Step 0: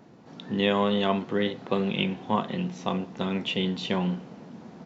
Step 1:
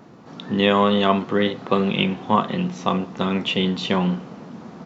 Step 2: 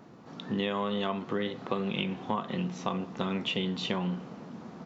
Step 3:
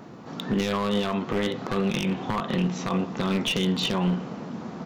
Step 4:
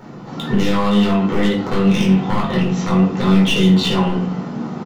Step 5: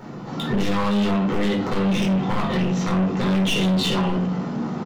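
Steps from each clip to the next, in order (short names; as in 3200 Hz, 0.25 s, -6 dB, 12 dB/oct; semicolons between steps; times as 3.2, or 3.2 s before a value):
bell 1200 Hz +6 dB 0.38 oct; gain +6 dB
compressor, threshold -21 dBFS, peak gain reduction 9.5 dB; gain -6 dB
one-sided fold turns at -28 dBFS; limiter -23.5 dBFS, peak gain reduction 7.5 dB; gain +8.5 dB
doubler 21 ms -13 dB; shoebox room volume 390 m³, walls furnished, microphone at 4.4 m
soft clip -17 dBFS, distortion -9 dB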